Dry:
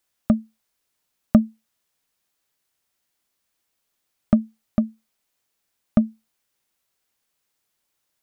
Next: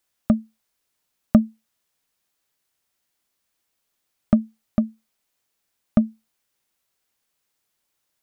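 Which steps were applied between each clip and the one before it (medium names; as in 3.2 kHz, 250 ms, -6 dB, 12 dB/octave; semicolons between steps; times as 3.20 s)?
no audible change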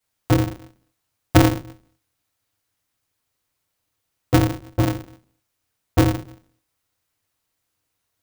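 simulated room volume 150 m³, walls furnished, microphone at 4.7 m; polarity switched at an audio rate 100 Hz; trim -9 dB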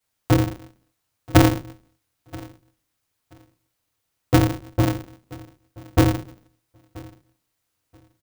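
feedback delay 980 ms, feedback 19%, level -22.5 dB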